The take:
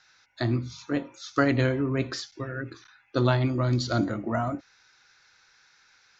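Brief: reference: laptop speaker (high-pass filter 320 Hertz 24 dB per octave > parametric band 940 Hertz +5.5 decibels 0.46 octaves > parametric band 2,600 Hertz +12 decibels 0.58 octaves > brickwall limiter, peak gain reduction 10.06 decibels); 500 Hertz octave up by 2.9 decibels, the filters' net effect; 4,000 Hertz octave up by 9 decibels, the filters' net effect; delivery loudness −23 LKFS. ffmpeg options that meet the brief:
ffmpeg -i in.wav -af "highpass=frequency=320:width=0.5412,highpass=frequency=320:width=1.3066,equalizer=frequency=500:width_type=o:gain=3.5,equalizer=frequency=940:width_type=o:width=0.46:gain=5.5,equalizer=frequency=2600:width_type=o:width=0.58:gain=12,equalizer=frequency=4000:width_type=o:gain=7,volume=6.5dB,alimiter=limit=-9.5dB:level=0:latency=1" out.wav

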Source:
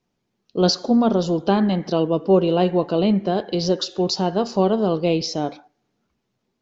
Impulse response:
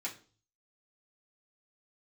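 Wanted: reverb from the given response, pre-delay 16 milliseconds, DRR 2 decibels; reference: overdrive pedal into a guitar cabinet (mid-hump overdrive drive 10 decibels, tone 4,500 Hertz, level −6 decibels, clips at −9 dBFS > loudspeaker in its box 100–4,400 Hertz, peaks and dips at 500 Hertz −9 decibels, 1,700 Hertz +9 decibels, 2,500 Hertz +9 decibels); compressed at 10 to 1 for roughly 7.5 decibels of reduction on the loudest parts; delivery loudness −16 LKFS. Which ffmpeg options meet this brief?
-filter_complex "[0:a]acompressor=threshold=-19dB:ratio=10,asplit=2[link_01][link_02];[1:a]atrim=start_sample=2205,adelay=16[link_03];[link_02][link_03]afir=irnorm=-1:irlink=0,volume=-3dB[link_04];[link_01][link_04]amix=inputs=2:normalize=0,asplit=2[link_05][link_06];[link_06]highpass=frequency=720:poles=1,volume=10dB,asoftclip=type=tanh:threshold=-9dB[link_07];[link_05][link_07]amix=inputs=2:normalize=0,lowpass=frequency=4500:poles=1,volume=-6dB,highpass=100,equalizer=frequency=500:width_type=q:width=4:gain=-9,equalizer=frequency=1700:width_type=q:width=4:gain=9,equalizer=frequency=2500:width_type=q:width=4:gain=9,lowpass=frequency=4400:width=0.5412,lowpass=frequency=4400:width=1.3066,volume=8dB"

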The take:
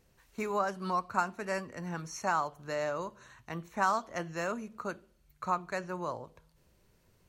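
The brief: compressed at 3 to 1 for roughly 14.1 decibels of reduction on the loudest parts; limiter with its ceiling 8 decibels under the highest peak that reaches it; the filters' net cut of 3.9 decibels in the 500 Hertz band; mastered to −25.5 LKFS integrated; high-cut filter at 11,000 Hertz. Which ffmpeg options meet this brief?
ffmpeg -i in.wav -af "lowpass=11000,equalizer=frequency=500:width_type=o:gain=-5,acompressor=threshold=-44dB:ratio=3,volume=22.5dB,alimiter=limit=-13.5dB:level=0:latency=1" out.wav

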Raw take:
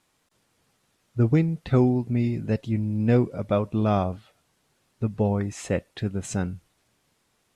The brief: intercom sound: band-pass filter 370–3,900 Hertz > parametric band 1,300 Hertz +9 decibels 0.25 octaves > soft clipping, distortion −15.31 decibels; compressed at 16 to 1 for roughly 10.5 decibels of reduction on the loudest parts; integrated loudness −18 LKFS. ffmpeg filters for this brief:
ffmpeg -i in.wav -af "acompressor=threshold=-25dB:ratio=16,highpass=370,lowpass=3900,equalizer=frequency=1300:width_type=o:width=0.25:gain=9,asoftclip=threshold=-26dB,volume=21.5dB" out.wav

